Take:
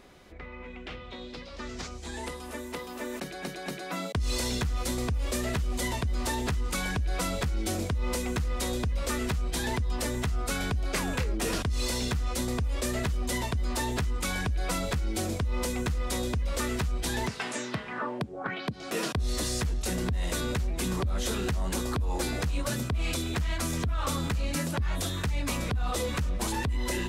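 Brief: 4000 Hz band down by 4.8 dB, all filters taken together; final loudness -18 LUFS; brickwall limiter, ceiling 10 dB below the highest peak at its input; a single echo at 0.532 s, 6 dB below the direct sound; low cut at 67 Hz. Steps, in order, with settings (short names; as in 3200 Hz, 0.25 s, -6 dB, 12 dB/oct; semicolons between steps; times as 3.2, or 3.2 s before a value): HPF 67 Hz; bell 4000 Hz -6 dB; limiter -29 dBFS; echo 0.532 s -6 dB; gain +19 dB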